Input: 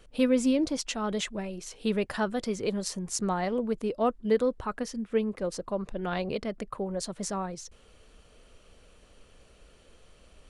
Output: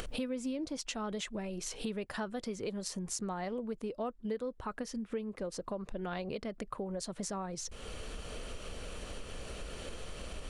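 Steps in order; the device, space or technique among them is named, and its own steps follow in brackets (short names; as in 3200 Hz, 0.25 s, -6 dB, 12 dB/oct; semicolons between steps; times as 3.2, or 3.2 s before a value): upward and downward compression (upward compressor, threshold -30 dBFS; compressor 4:1, threshold -38 dBFS, peak gain reduction 16 dB); gain +1.5 dB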